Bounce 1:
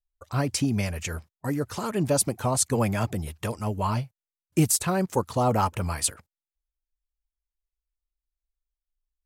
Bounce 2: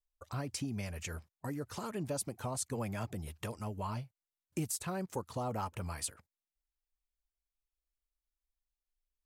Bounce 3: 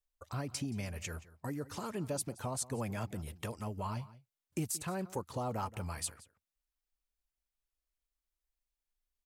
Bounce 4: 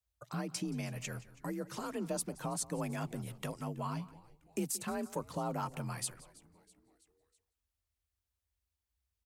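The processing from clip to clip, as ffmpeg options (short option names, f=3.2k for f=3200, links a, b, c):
-af "acompressor=threshold=-36dB:ratio=2,volume=-5dB"
-filter_complex "[0:a]asplit=2[a][b];[b]adelay=174.9,volume=-18dB,highshelf=f=4k:g=-3.94[c];[a][c]amix=inputs=2:normalize=0"
-filter_complex "[0:a]afreqshift=42,asplit=5[a][b][c][d][e];[b]adelay=326,afreqshift=-150,volume=-22.5dB[f];[c]adelay=652,afreqshift=-300,volume=-27.5dB[g];[d]adelay=978,afreqshift=-450,volume=-32.6dB[h];[e]adelay=1304,afreqshift=-600,volume=-37.6dB[i];[a][f][g][h][i]amix=inputs=5:normalize=0"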